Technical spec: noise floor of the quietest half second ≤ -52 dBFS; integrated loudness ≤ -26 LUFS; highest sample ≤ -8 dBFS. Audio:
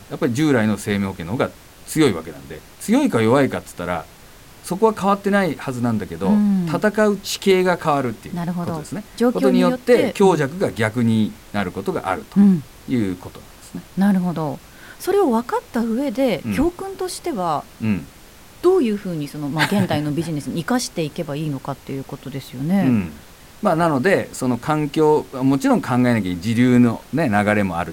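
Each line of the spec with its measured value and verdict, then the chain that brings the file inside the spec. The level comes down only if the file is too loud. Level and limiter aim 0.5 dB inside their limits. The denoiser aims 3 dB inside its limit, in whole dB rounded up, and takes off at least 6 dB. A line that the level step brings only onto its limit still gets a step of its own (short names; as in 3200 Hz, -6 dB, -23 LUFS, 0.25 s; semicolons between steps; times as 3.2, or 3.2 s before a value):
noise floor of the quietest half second -44 dBFS: fail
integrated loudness -19.5 LUFS: fail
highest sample -3.0 dBFS: fail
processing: denoiser 6 dB, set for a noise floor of -44 dBFS; gain -7 dB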